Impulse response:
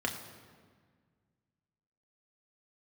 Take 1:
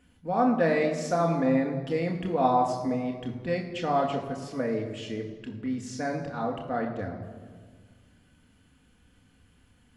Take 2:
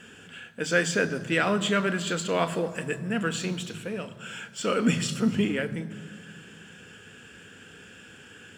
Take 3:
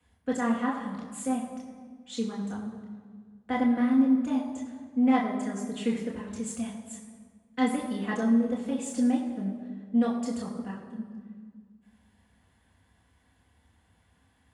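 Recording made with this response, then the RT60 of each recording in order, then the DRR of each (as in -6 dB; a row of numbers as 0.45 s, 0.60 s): 1; 1.7 s, 1.7 s, 1.7 s; 1.0 dB, 9.5 dB, -4.0 dB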